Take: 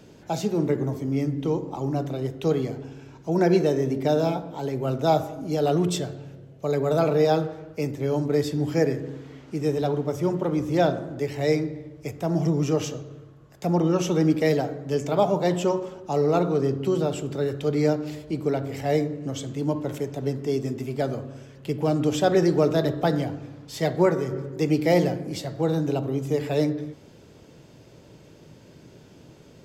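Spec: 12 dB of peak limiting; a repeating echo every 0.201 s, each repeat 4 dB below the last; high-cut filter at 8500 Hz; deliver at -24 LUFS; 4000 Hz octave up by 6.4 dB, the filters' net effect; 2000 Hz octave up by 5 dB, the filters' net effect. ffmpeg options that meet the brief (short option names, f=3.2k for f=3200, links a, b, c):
-af "lowpass=8.5k,equalizer=f=2k:t=o:g=4.5,equalizer=f=4k:t=o:g=7,alimiter=limit=-18.5dB:level=0:latency=1,aecho=1:1:201|402|603|804|1005|1206|1407|1608|1809:0.631|0.398|0.25|0.158|0.0994|0.0626|0.0394|0.0249|0.0157,volume=3dB"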